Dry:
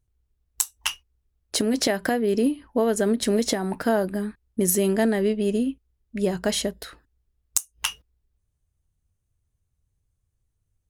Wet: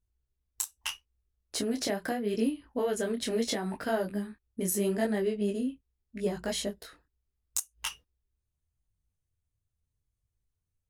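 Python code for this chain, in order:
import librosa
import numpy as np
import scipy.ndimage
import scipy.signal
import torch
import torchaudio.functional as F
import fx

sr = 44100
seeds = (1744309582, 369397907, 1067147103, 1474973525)

y = fx.dynamic_eq(x, sr, hz=2800.0, q=1.1, threshold_db=-43.0, ratio=4.0, max_db=5, at=(2.22, 4.66))
y = fx.detune_double(y, sr, cents=27)
y = F.gain(torch.from_numpy(y), -4.5).numpy()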